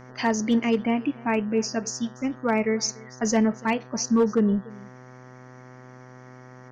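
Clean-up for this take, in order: clip repair -14 dBFS; de-hum 126.8 Hz, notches 15; inverse comb 291 ms -22 dB

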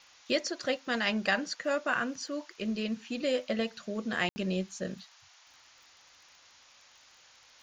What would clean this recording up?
de-click; room tone fill 4.29–4.36 s; noise print and reduce 18 dB

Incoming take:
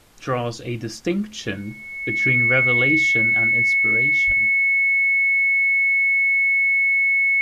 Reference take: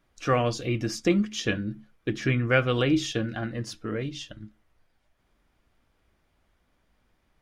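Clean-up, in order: band-stop 2.2 kHz, Q 30; 4.26–4.38 s: high-pass 140 Hz 24 dB/octave; expander -28 dBFS, range -21 dB

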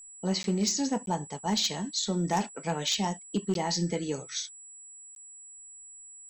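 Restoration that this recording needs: clip repair -20 dBFS; band-stop 7.8 kHz, Q 30; interpolate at 0.43/1.06/3.54/5.15 s, 12 ms

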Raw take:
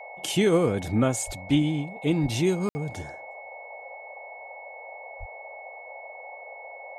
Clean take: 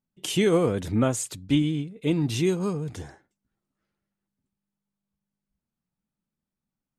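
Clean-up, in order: band-stop 2.2 kHz, Q 30; de-plosive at 1.26/2.22/5.19 s; room tone fill 2.69–2.75 s; noise print and reduce 30 dB

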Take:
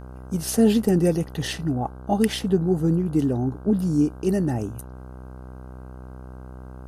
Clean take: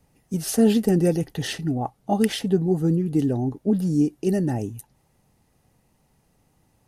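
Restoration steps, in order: de-hum 63.6 Hz, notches 25

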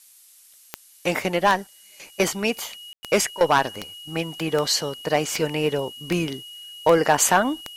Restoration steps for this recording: de-click; band-stop 2.9 kHz, Q 30; room tone fill 2.93–3.03 s; noise print and reduce 15 dB

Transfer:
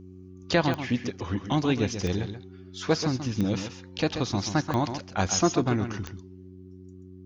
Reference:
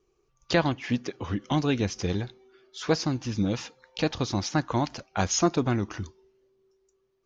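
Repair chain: de-click; de-hum 92.5 Hz, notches 4; inverse comb 133 ms -9 dB

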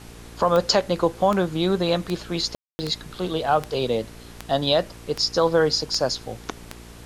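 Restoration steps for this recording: de-click; de-hum 58.1 Hz, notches 8; room tone fill 2.55–2.79 s; noise reduction 25 dB, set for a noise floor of -42 dBFS

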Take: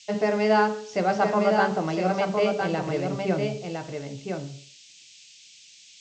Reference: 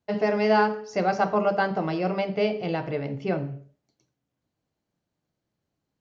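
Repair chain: noise print and reduce 30 dB; inverse comb 1009 ms -5 dB

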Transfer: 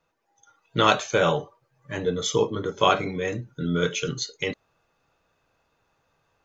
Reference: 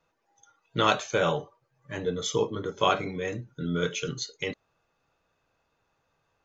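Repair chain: gain correction -4 dB, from 0.47 s

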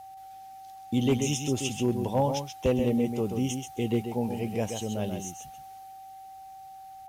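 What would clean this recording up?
clip repair -16.5 dBFS; band-stop 770 Hz, Q 30; inverse comb 132 ms -6.5 dB

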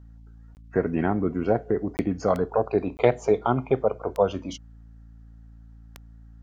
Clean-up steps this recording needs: de-click; de-hum 56 Hz, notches 5; interpolate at 0.55/1.97/2.97 s, 19 ms

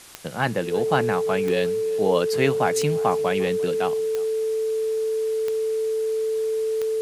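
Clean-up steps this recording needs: de-click; band-stop 440 Hz, Q 30; noise print and reduce 30 dB; inverse comb 350 ms -22.5 dB

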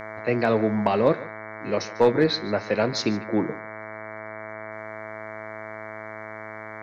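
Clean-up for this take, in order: clip repair -9.5 dBFS; de-hum 108.3 Hz, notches 21; band-stop 650 Hz, Q 30; inverse comb 148 ms -19 dB

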